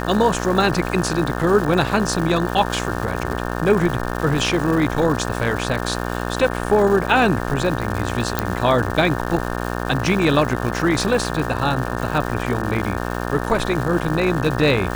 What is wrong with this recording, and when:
mains buzz 60 Hz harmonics 30 −25 dBFS
surface crackle 390 per second −26 dBFS
0:08.39: click −4 dBFS

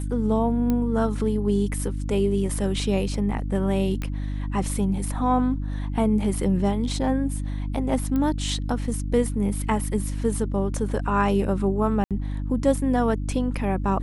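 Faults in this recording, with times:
mains hum 50 Hz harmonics 6 −28 dBFS
0:00.70: click −13 dBFS
0:04.02: click −17 dBFS
0:08.16: click −16 dBFS
0:12.04–0:12.11: drop-out 67 ms

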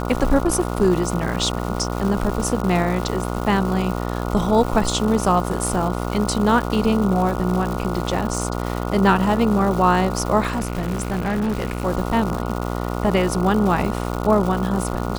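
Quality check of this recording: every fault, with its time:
mains buzz 60 Hz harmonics 24 −25 dBFS
surface crackle 350 per second −26 dBFS
0:10.48–0:11.86: clipping −18.5 dBFS

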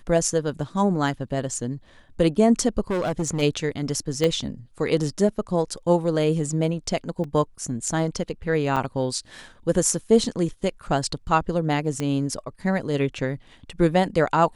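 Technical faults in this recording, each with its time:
0:02.90–0:03.43: clipping −20.5 dBFS
0:04.24: click −10 dBFS
0:07.24: drop-out 2.8 ms
0:08.76–0:08.77: drop-out 6.8 ms
0:12.00: click −14 dBFS

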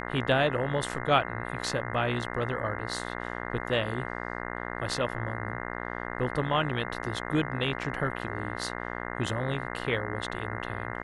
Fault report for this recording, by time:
mains buzz 60 Hz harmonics 35 −36 dBFS

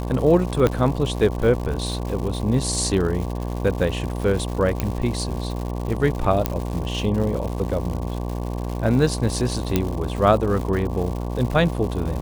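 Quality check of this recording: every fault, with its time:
mains buzz 60 Hz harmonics 19 −27 dBFS
surface crackle 230 per second −29 dBFS
0:00.67: click −7 dBFS
0:04.80: click −8 dBFS
0:06.46: click −5 dBFS
0:09.76: click −5 dBFS

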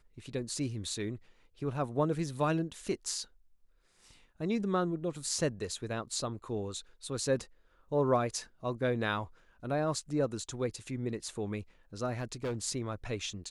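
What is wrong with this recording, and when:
0:12.14–0:12.57: clipping −30.5 dBFS

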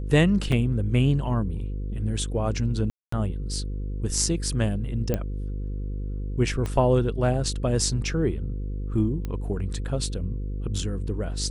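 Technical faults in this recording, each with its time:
mains buzz 50 Hz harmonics 10 −30 dBFS
0:00.52: drop-out 2.8 ms
0:02.90–0:03.12: drop-out 224 ms
0:05.14: click −12 dBFS
0:06.66: click −17 dBFS
0:09.25: click −19 dBFS

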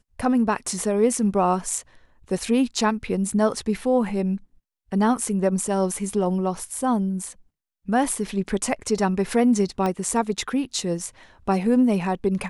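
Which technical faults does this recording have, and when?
0:09.86: click −13 dBFS

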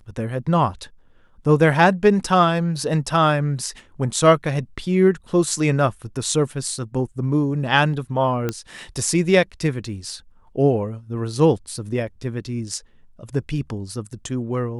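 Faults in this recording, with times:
0:08.49: click −10 dBFS

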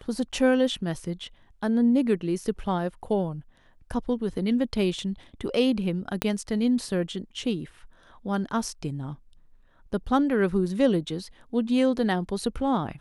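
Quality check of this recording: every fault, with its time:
0:06.22: click −9 dBFS

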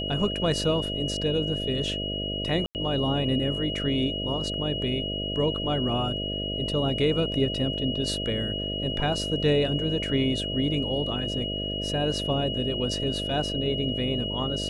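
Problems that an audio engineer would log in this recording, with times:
mains buzz 50 Hz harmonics 13 −33 dBFS
whistle 2,900 Hz −31 dBFS
0:02.66–0:02.75: drop-out 89 ms

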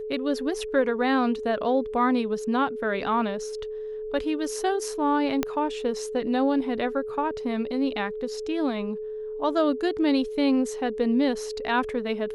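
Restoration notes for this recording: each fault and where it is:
whistle 430 Hz −31 dBFS
0:05.43: click −10 dBFS

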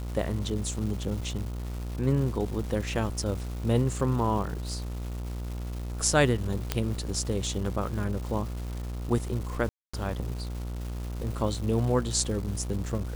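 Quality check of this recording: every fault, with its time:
mains buzz 60 Hz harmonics 24 −34 dBFS
surface crackle 560 per second −37 dBFS
0:06.72: click −10 dBFS
0:09.69–0:09.94: drop-out 245 ms

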